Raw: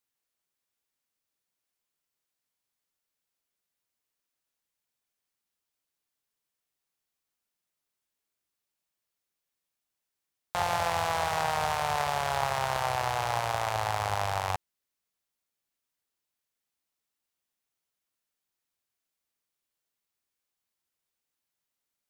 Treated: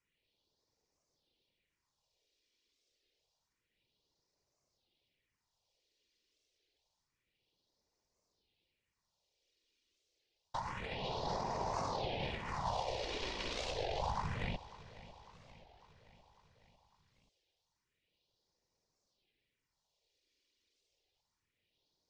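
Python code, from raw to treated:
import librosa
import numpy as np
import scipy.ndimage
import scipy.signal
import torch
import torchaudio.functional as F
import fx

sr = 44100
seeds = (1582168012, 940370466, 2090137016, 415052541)

p1 = scipy.signal.sosfilt(scipy.signal.butter(4, 5200.0, 'lowpass', fs=sr, output='sos'), x)
p2 = fx.peak_eq(p1, sr, hz=1400.0, db=-11.5, octaves=0.67)
p3 = p2 + 0.56 * np.pad(p2, (int(2.1 * sr / 1000.0), 0))[:len(p2)]
p4 = fx.over_compress(p3, sr, threshold_db=-39.0, ratio=-1.0)
p5 = fx.whisperise(p4, sr, seeds[0])
p6 = fx.phaser_stages(p5, sr, stages=4, low_hz=130.0, high_hz=3000.0, hz=0.28, feedback_pct=25)
p7 = p6 + fx.echo_feedback(p6, sr, ms=550, feedback_pct=59, wet_db=-17.5, dry=0)
p8 = fx.record_warp(p7, sr, rpm=33.33, depth_cents=250.0)
y = p8 * librosa.db_to_amplitude(3.0)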